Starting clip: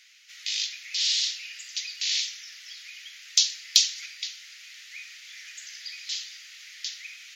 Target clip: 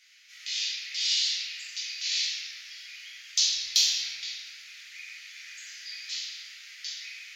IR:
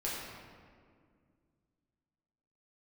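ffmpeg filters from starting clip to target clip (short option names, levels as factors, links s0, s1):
-filter_complex "[0:a]asubboost=boost=5.5:cutoff=100[s0];[1:a]atrim=start_sample=2205[s1];[s0][s1]afir=irnorm=-1:irlink=0,volume=0.668"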